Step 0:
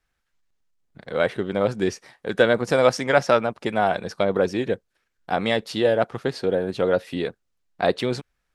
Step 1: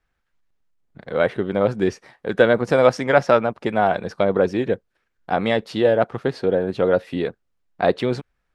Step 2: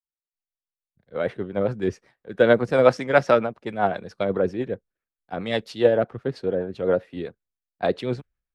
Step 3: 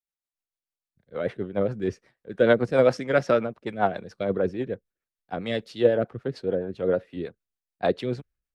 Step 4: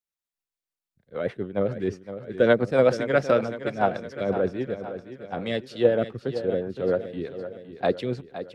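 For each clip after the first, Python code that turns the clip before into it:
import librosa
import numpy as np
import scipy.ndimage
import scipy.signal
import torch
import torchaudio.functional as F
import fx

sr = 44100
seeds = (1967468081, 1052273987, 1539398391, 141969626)

y1 = fx.high_shelf(x, sr, hz=3700.0, db=-11.0)
y1 = F.gain(torch.from_numpy(y1), 3.0).numpy()
y2 = fx.rotary(y1, sr, hz=7.5)
y2 = fx.band_widen(y2, sr, depth_pct=100)
y2 = F.gain(torch.from_numpy(y2), -2.0).numpy()
y3 = fx.rotary(y2, sr, hz=6.7)
y4 = fx.echo_feedback(y3, sr, ms=514, feedback_pct=52, wet_db=-11.5)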